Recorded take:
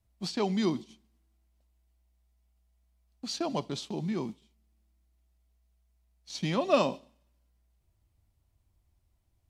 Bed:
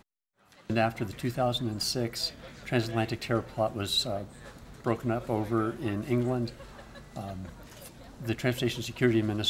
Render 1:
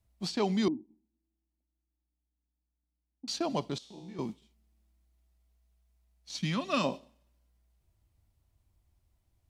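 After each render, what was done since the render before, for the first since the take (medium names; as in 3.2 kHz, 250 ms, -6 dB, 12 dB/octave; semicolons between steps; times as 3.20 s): 0.68–3.28 s: cascade formant filter u; 3.78–4.19 s: feedback comb 62 Hz, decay 1.1 s, mix 90%; 6.37–6.84 s: high-order bell 550 Hz -10 dB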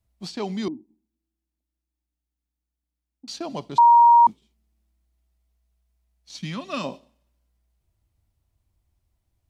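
3.78–4.27 s: bleep 943 Hz -9.5 dBFS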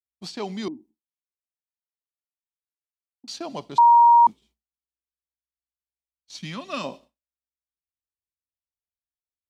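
expander -44 dBFS; bass shelf 250 Hz -6 dB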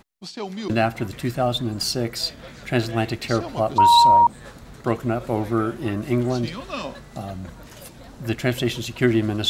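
add bed +6 dB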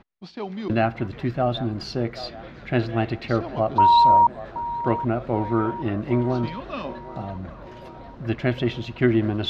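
distance through air 270 m; feedback echo behind a band-pass 776 ms, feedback 56%, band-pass 750 Hz, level -14 dB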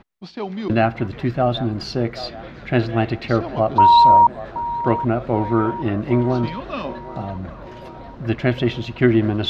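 trim +4 dB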